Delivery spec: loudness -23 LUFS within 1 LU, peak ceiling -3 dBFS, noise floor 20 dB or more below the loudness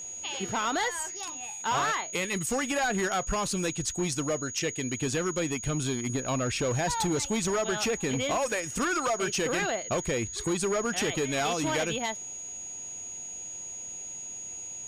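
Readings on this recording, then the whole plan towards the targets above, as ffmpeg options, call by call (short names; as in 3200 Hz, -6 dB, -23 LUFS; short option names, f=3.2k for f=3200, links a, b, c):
steady tone 6700 Hz; tone level -37 dBFS; loudness -29.5 LUFS; peak -20.0 dBFS; loudness target -23.0 LUFS
-> -af "bandreject=f=6.7k:w=30"
-af "volume=6.5dB"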